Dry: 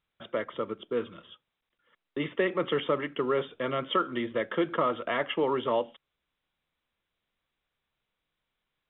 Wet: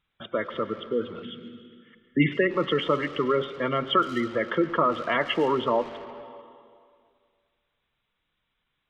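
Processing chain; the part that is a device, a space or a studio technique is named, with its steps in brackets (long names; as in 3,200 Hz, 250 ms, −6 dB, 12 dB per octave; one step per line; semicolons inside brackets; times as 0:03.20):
parametric band 520 Hz −3.5 dB 1.3 octaves
gate on every frequency bin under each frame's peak −20 dB strong
saturated reverb return (on a send at −8 dB: convolution reverb RT60 2.0 s, pre-delay 96 ms + soft clipping −34 dBFS, distortion −8 dB)
0:01.22–0:02.37: on the sum: graphic EQ with 10 bands 125 Hz +7 dB, 250 Hz +10 dB, 500 Hz −7 dB, 1,000 Hz −9 dB, 2,000 Hz +9 dB
level +6 dB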